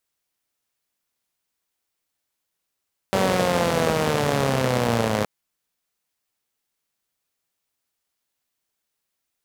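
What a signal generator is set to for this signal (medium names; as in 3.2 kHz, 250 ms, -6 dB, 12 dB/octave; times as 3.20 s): four-cylinder engine model, changing speed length 2.12 s, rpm 5800, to 3100, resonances 130/220/470 Hz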